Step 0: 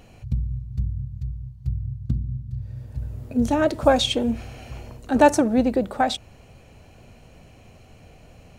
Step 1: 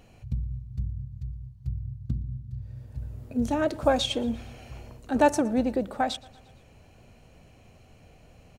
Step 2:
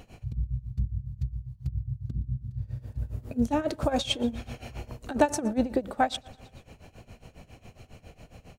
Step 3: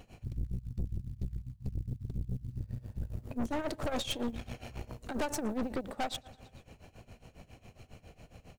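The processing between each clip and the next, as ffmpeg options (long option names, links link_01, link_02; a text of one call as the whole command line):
ffmpeg -i in.wav -af "aecho=1:1:116|232|348|464:0.0708|0.0411|0.0238|0.0138,volume=-5.5dB" out.wav
ffmpeg -i in.wav -filter_complex "[0:a]asplit=2[link_01][link_02];[link_02]acompressor=threshold=-33dB:ratio=6,volume=3dB[link_03];[link_01][link_03]amix=inputs=2:normalize=0,tremolo=f=7.3:d=0.87" out.wav
ffmpeg -i in.wav -af "acrusher=bits=9:mode=log:mix=0:aa=0.000001,aeval=exprs='(tanh(31.6*val(0)+0.75)-tanh(0.75))/31.6':channel_layout=same" out.wav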